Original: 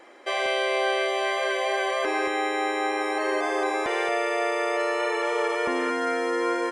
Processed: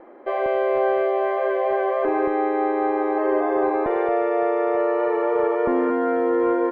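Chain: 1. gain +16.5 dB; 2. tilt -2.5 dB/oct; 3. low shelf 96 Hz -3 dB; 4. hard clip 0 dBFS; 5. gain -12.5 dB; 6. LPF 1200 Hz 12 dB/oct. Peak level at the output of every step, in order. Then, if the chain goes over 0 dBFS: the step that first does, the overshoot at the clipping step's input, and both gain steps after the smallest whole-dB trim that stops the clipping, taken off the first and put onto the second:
+1.5, +3.5, +3.5, 0.0, -12.5, -12.0 dBFS; step 1, 3.5 dB; step 1 +12.5 dB, step 5 -8.5 dB

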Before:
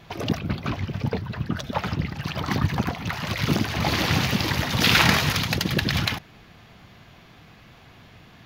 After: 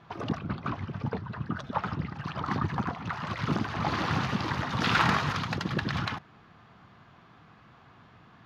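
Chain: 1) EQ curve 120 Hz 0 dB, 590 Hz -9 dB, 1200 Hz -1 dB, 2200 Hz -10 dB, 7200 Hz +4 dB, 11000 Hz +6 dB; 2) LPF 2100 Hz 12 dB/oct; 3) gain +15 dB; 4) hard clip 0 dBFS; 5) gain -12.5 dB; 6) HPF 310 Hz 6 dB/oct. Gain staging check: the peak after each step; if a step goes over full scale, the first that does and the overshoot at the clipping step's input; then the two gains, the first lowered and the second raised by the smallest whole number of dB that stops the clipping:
-6.0, -10.0, +5.0, 0.0, -12.5, -11.0 dBFS; step 3, 5.0 dB; step 3 +10 dB, step 5 -7.5 dB

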